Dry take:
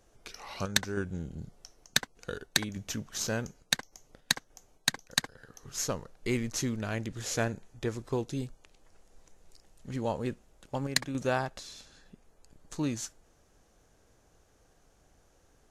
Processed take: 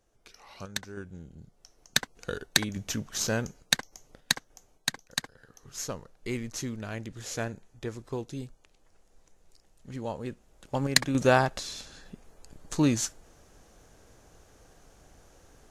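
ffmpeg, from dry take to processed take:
ffmpeg -i in.wav -af "volume=14.5dB,afade=type=in:start_time=1.53:duration=0.63:silence=0.281838,afade=type=out:start_time=3.83:duration=1.24:silence=0.473151,afade=type=in:start_time=10.3:duration=0.93:silence=0.281838" out.wav

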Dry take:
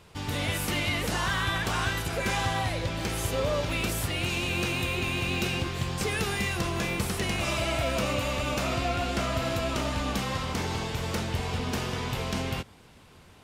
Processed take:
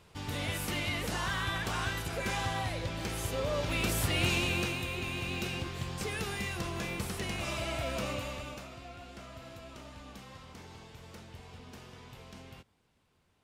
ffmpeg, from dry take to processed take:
ffmpeg -i in.wav -af "volume=1dB,afade=type=in:start_time=3.47:duration=0.79:silence=0.473151,afade=type=out:start_time=4.26:duration=0.54:silence=0.398107,afade=type=out:start_time=8.08:duration=0.61:silence=0.251189" out.wav

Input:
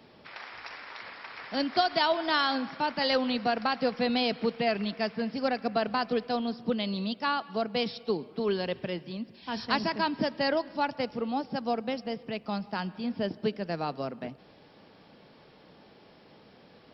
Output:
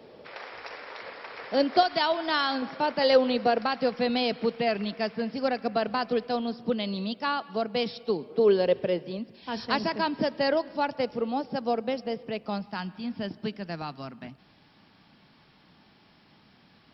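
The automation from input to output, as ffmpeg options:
ffmpeg -i in.wav -af "asetnsamples=nb_out_samples=441:pad=0,asendcmd='1.83 equalizer g 0.5;2.62 equalizer g 9;3.62 equalizer g 2.5;8.3 equalizer g 12;9.19 equalizer g 4.5;12.62 equalizer g -7;13.82 equalizer g -13.5',equalizer=frequency=490:width_type=o:width=0.9:gain=12" out.wav

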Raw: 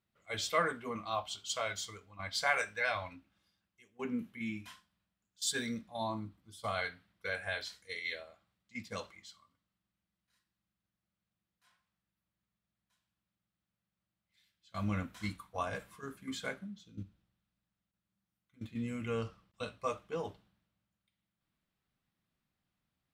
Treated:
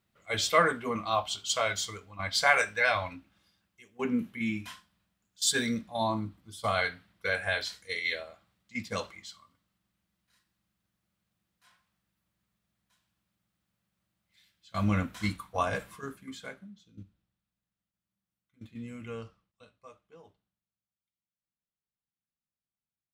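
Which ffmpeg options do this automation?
ffmpeg -i in.wav -af "volume=7.5dB,afade=type=out:start_time=15.9:duration=0.43:silence=0.281838,afade=type=out:start_time=19.1:duration=0.51:silence=0.237137" out.wav

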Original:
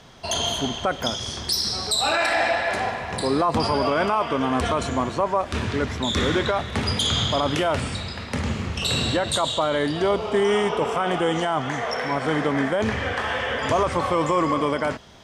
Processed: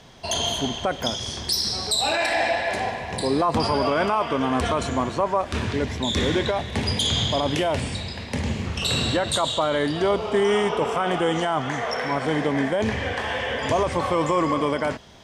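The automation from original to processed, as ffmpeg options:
ffmpeg -i in.wav -af "asetnsamples=nb_out_samples=441:pad=0,asendcmd='1.95 equalizer g -12.5;3.42 equalizer g -1.5;5.73 equalizer g -12;8.66 equalizer g -0.5;12.25 equalizer g -9.5;14 equalizer g -3.5',equalizer=frequency=1300:width_type=o:width=0.33:gain=-5.5" out.wav

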